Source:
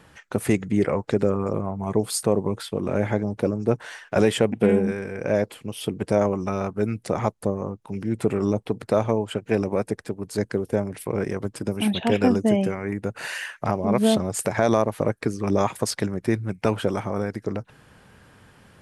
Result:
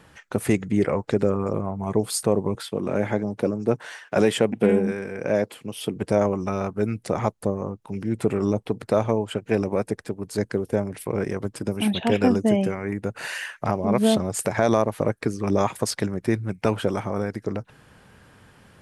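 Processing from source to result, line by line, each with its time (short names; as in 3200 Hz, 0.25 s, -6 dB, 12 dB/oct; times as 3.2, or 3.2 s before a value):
2.55–5.96 HPF 120 Hz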